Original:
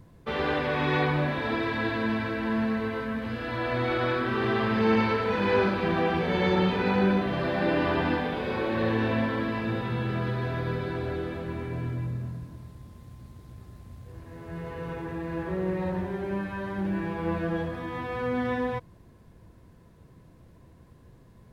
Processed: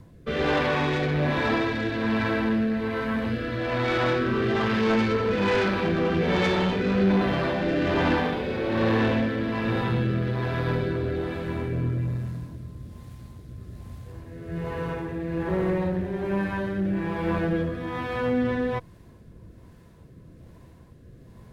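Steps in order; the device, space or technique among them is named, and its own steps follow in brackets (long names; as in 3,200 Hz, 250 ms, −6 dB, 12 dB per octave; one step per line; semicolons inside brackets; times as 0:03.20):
overdriven rotary cabinet (tube saturation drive 24 dB, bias 0.45; rotating-speaker cabinet horn 1.2 Hz)
level +8 dB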